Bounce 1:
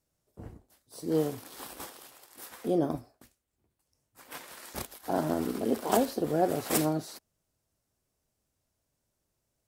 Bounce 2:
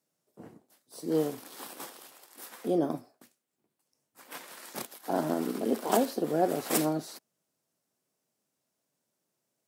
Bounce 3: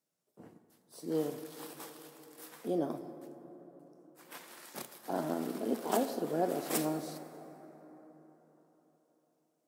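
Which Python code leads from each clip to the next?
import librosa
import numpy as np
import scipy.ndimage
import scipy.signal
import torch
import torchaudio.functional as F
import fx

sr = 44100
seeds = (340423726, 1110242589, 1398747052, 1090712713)

y1 = scipy.signal.sosfilt(scipy.signal.butter(4, 160.0, 'highpass', fs=sr, output='sos'), x)
y2 = fx.rev_plate(y1, sr, seeds[0], rt60_s=4.3, hf_ratio=0.4, predelay_ms=0, drr_db=9.5)
y2 = F.gain(torch.from_numpy(y2), -5.5).numpy()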